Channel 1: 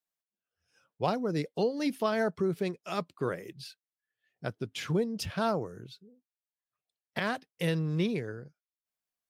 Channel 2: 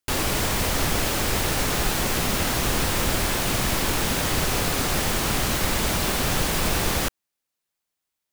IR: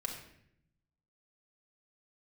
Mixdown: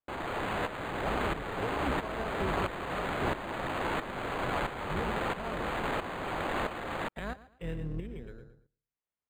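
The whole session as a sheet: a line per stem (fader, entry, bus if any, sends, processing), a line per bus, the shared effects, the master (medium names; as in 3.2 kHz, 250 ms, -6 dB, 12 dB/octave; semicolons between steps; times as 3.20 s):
-6.0 dB, 0.00 s, no send, echo send -9.5 dB, octave divider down 2 oct, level +1 dB
-3.5 dB, 0.00 s, no send, no echo send, high-pass 440 Hz 12 dB/octave; sample-and-hold 12×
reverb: none
echo: feedback delay 114 ms, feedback 23%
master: tremolo saw up 1.5 Hz, depth 70%; decimation joined by straight lines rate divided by 8×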